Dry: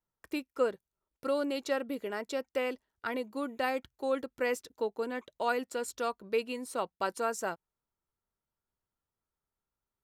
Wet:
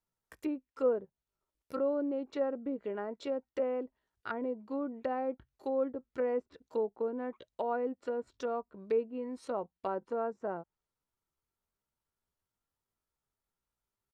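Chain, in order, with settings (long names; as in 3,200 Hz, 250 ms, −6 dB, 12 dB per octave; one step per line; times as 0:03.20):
tempo change 0.71×
treble cut that deepens with the level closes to 750 Hz, closed at −31 dBFS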